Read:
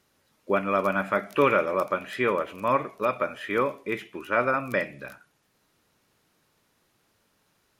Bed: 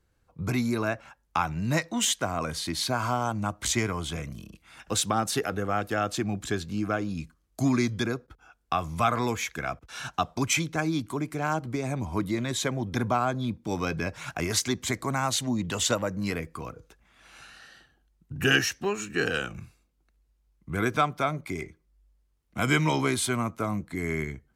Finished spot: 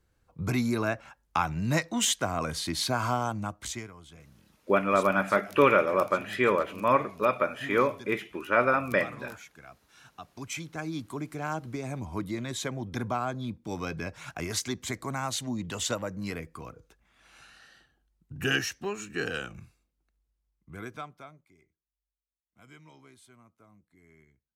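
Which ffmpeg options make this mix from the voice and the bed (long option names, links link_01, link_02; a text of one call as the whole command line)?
ffmpeg -i stem1.wav -i stem2.wav -filter_complex "[0:a]adelay=4200,volume=0.5dB[link_01];[1:a]volume=12.5dB,afade=type=out:start_time=3.13:duration=0.78:silence=0.133352,afade=type=in:start_time=10.22:duration=0.95:silence=0.223872,afade=type=out:start_time=19.5:duration=1.98:silence=0.0595662[link_02];[link_01][link_02]amix=inputs=2:normalize=0" out.wav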